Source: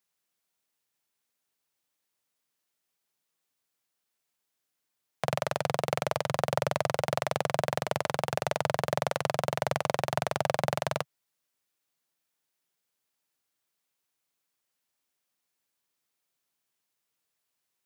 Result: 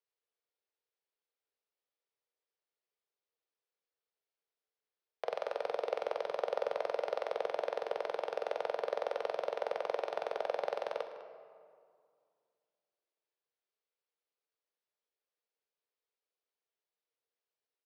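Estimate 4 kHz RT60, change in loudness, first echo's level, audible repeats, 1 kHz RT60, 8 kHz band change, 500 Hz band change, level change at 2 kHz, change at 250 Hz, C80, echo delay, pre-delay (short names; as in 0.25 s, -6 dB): 1.2 s, -6.5 dB, -15.5 dB, 1, 2.1 s, under -20 dB, -4.0 dB, -10.5 dB, -17.0 dB, 8.5 dB, 0.202 s, 3 ms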